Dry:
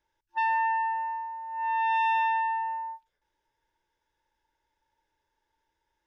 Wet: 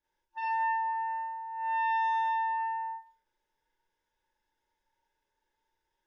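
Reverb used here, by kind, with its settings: Schroeder reverb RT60 0.32 s, combs from 30 ms, DRR -6.5 dB; gain -10 dB

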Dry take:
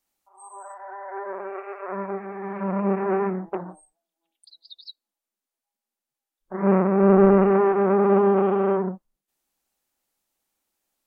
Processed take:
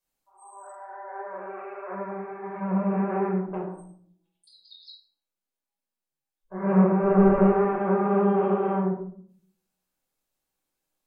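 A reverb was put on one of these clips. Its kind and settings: shoebox room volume 730 m³, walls furnished, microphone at 5.3 m; gain -10.5 dB

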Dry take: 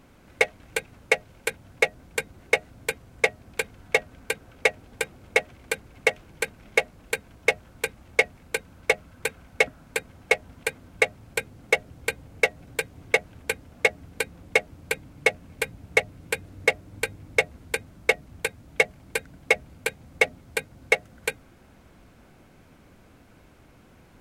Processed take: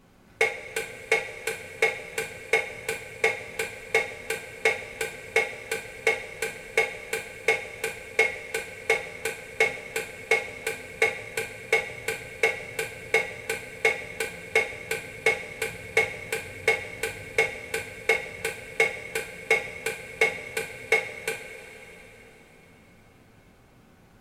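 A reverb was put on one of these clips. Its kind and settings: two-slope reverb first 0.34 s, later 4.5 s, from -18 dB, DRR 0 dB; gain -4.5 dB

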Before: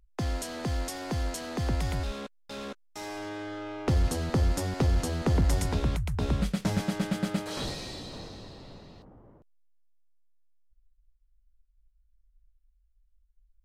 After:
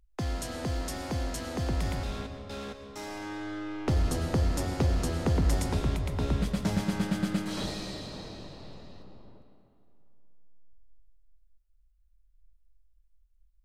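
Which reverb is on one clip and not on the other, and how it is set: digital reverb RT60 2.7 s, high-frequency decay 0.7×, pre-delay 75 ms, DRR 7 dB; gain -1.5 dB

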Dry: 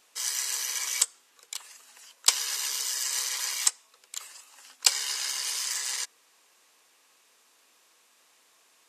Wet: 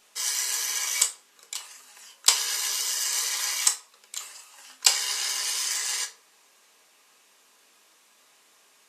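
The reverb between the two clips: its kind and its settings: shoebox room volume 280 m³, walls furnished, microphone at 1.3 m; gain +1.5 dB

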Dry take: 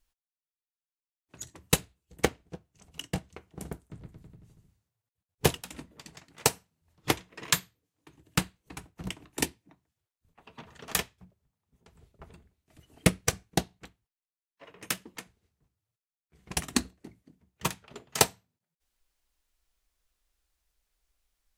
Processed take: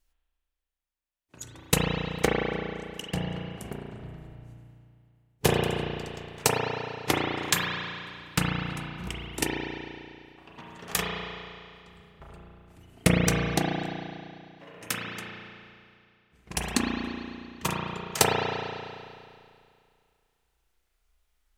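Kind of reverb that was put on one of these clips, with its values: spring tank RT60 2.3 s, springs 34 ms, chirp 80 ms, DRR -3.5 dB

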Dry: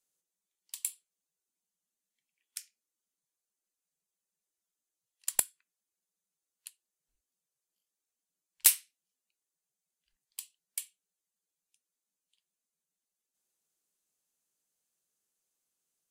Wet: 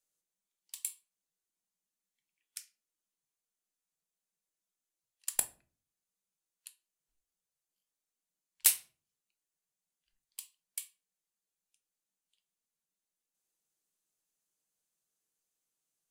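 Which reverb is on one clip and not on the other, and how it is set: shoebox room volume 310 m³, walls furnished, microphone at 0.58 m; gain -3 dB

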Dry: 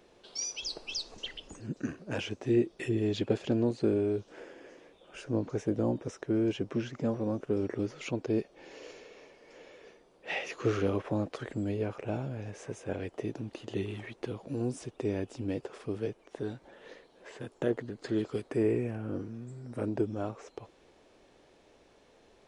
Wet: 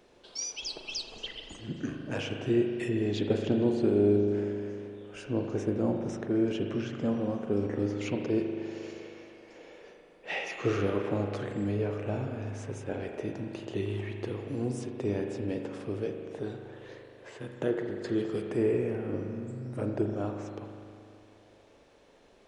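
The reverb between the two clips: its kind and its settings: spring tank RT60 2.5 s, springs 39 ms, chirp 50 ms, DRR 3 dB

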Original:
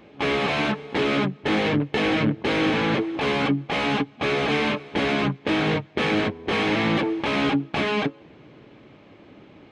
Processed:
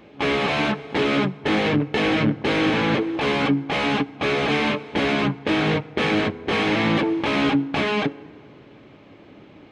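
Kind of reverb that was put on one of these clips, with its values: FDN reverb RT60 2.2 s, high-frequency decay 0.4×, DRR 19 dB; gain +1.5 dB

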